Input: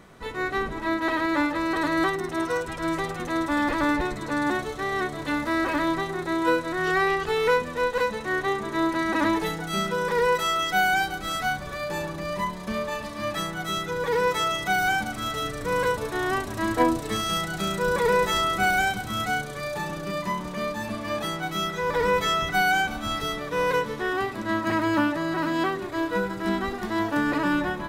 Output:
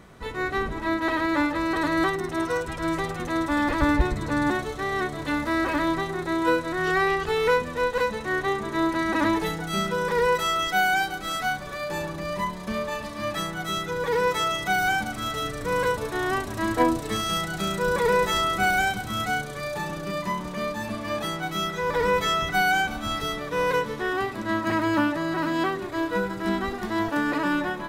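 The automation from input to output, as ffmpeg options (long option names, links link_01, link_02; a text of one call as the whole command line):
ffmpeg -i in.wav -af "asetnsamples=nb_out_samples=441:pad=0,asendcmd='3.82 equalizer g 14.5;4.51 equalizer g 4.5;10.67 equalizer g -6;11.92 equalizer g 1;27.08 equalizer g -9',equalizer=frequency=63:width_type=o:width=2.1:gain=5.5" out.wav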